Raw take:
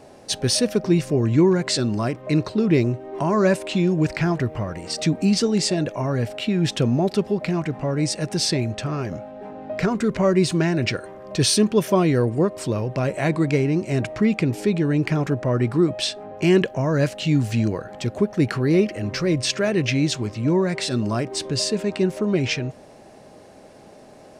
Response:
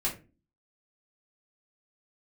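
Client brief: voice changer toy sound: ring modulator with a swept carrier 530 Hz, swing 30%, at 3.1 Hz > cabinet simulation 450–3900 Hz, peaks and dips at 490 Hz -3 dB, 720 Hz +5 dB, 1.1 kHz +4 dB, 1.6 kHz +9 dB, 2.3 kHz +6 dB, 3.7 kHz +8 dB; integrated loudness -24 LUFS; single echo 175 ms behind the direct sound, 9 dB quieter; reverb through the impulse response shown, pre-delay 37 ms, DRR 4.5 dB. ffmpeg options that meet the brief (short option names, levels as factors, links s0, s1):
-filter_complex "[0:a]aecho=1:1:175:0.355,asplit=2[s0][s1];[1:a]atrim=start_sample=2205,adelay=37[s2];[s1][s2]afir=irnorm=-1:irlink=0,volume=0.299[s3];[s0][s3]amix=inputs=2:normalize=0,aeval=exprs='val(0)*sin(2*PI*530*n/s+530*0.3/3.1*sin(2*PI*3.1*n/s))':c=same,highpass=450,equalizer=f=490:t=q:w=4:g=-3,equalizer=f=720:t=q:w=4:g=5,equalizer=f=1100:t=q:w=4:g=4,equalizer=f=1600:t=q:w=4:g=9,equalizer=f=2300:t=q:w=4:g=6,equalizer=f=3700:t=q:w=4:g=8,lowpass=f=3900:w=0.5412,lowpass=f=3900:w=1.3066,volume=0.708"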